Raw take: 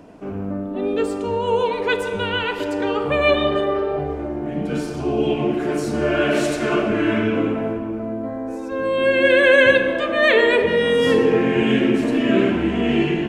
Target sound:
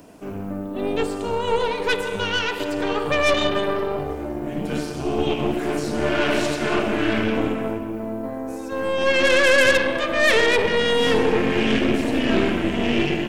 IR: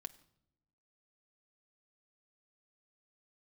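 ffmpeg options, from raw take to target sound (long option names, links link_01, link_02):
-filter_complex "[0:a]acrossover=split=5000[link_01][link_02];[link_02]acompressor=threshold=-56dB:ratio=4:attack=1:release=60[link_03];[link_01][link_03]amix=inputs=2:normalize=0,aemphasis=mode=production:type=75fm,aeval=exprs='0.794*(cos(1*acos(clip(val(0)/0.794,-1,1)))-cos(1*PI/2))+0.141*(cos(3*acos(clip(val(0)/0.794,-1,1)))-cos(3*PI/2))+0.0794*(cos(5*acos(clip(val(0)/0.794,-1,1)))-cos(5*PI/2))+0.0708*(cos(8*acos(clip(val(0)/0.794,-1,1)))-cos(8*PI/2))':channel_layout=same,volume=-1.5dB"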